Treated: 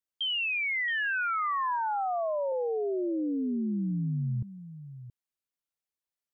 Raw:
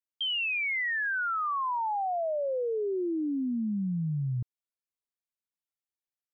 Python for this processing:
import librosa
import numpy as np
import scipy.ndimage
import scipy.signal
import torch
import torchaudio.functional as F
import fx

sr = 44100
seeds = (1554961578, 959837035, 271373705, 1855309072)

y = fx.low_shelf(x, sr, hz=300.0, db=9.0, at=(0.75, 1.76))
y = fx.lowpass(y, sr, hz=1200.0, slope=12, at=(2.52, 3.91))
y = y + 10.0 ** (-14.0 / 20.0) * np.pad(y, (int(674 * sr / 1000.0), 0))[:len(y)]